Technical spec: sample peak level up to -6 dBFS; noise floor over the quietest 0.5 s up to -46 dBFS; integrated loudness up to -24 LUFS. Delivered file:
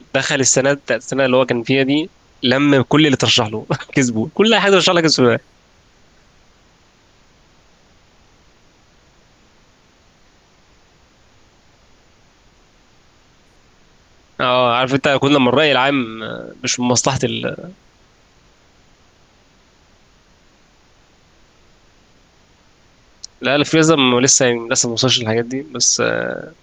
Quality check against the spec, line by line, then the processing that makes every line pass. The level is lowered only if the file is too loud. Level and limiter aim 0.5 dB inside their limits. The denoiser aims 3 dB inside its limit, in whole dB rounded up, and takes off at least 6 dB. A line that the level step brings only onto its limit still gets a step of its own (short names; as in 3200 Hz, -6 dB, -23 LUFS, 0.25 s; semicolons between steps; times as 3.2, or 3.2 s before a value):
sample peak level -2.0 dBFS: fail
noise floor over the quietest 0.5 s -53 dBFS: OK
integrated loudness -15.0 LUFS: fail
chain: gain -9.5 dB